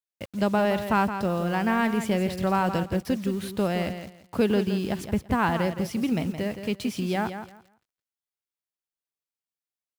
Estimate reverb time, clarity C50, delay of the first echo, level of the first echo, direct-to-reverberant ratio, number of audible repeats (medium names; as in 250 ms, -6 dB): no reverb, no reverb, 169 ms, -9.5 dB, no reverb, 2